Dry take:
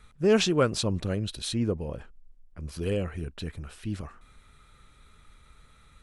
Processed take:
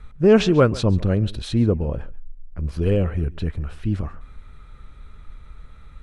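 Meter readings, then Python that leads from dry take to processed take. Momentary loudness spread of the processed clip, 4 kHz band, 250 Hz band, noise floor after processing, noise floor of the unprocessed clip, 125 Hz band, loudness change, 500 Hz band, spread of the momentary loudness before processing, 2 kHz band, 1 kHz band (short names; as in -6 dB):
15 LU, 0.0 dB, +8.5 dB, -44 dBFS, -58 dBFS, +11.0 dB, +8.0 dB, +7.5 dB, 17 LU, +4.0 dB, +6.0 dB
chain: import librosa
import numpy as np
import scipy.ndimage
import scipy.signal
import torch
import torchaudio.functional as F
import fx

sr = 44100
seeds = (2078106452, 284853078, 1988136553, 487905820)

p1 = fx.lowpass(x, sr, hz=1700.0, slope=6)
p2 = fx.low_shelf(p1, sr, hz=75.0, db=10.5)
p3 = p2 + fx.echo_single(p2, sr, ms=139, db=-20.5, dry=0)
y = F.gain(torch.from_numpy(p3), 7.5).numpy()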